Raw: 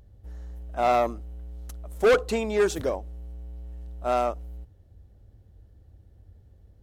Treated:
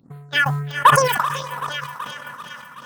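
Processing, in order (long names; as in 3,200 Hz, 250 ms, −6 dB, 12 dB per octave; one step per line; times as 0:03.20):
high-pass filter 79 Hz 12 dB per octave
parametric band 990 Hz +2.5 dB 0.28 octaves
feedback delay with all-pass diffusion 1,110 ms, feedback 50%, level −10 dB
all-pass phaser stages 4, 0.6 Hz, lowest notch 170–2,300 Hz
change of speed 2.39×
feedback echo with a high-pass in the loop 380 ms, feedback 72%, high-pass 470 Hz, level −9 dB
transient designer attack +11 dB, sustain −11 dB
level that may fall only so fast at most 51 dB per second
level −1 dB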